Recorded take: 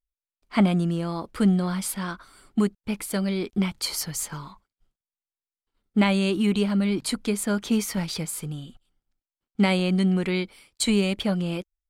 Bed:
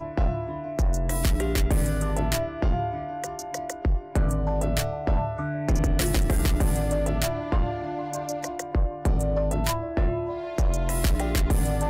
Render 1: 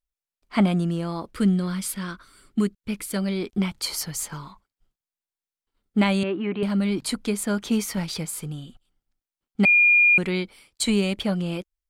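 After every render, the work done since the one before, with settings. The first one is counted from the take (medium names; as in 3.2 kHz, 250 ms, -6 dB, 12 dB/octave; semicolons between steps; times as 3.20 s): 1.33–3.16 s: peaking EQ 790 Hz -10 dB 0.73 oct; 6.23–6.63 s: cabinet simulation 190–2400 Hz, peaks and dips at 210 Hz -5 dB, 630 Hz +3 dB, 1.8 kHz +3 dB; 9.65–10.18 s: bleep 2.42 kHz -13 dBFS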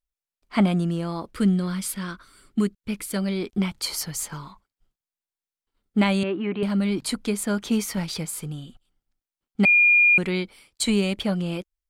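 no audible change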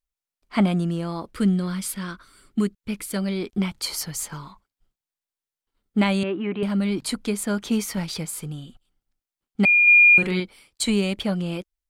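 6.23–6.76 s: band-stop 4.3 kHz; 9.83–10.40 s: doubling 43 ms -5.5 dB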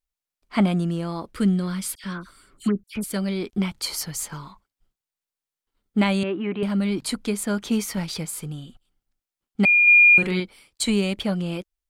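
1.95–3.04 s: phase dispersion lows, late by 87 ms, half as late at 2.2 kHz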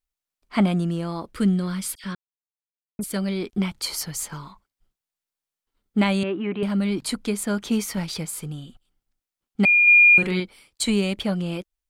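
2.15–2.99 s: mute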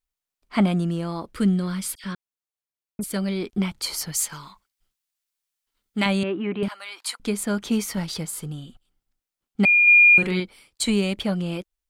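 4.12–6.06 s: tilt shelf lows -6 dB, about 1.2 kHz; 6.68–7.20 s: high-pass 810 Hz 24 dB/octave; 7.92–8.52 s: band-stop 2.4 kHz, Q 10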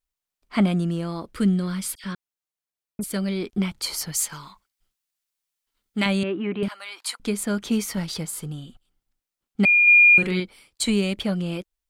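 dynamic bell 870 Hz, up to -4 dB, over -39 dBFS, Q 2.1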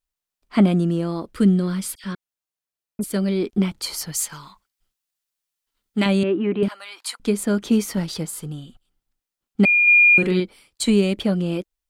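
band-stop 2.2 kHz, Q 29; dynamic bell 340 Hz, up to +7 dB, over -36 dBFS, Q 0.72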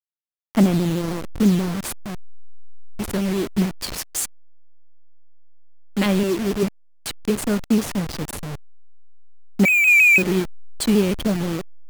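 send-on-delta sampling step -23.5 dBFS; vibrato with a chosen wave saw down 6.3 Hz, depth 100 cents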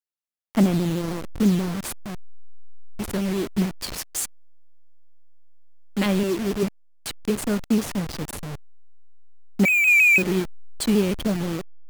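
trim -2.5 dB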